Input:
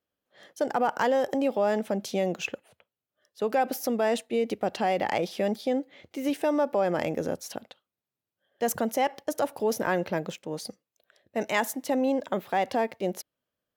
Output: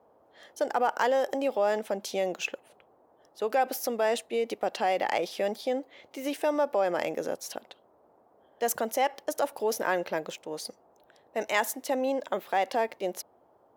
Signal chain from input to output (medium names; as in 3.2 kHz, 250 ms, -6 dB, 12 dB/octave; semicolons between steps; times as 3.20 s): band noise 55–820 Hz -60 dBFS; tone controls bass -15 dB, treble +1 dB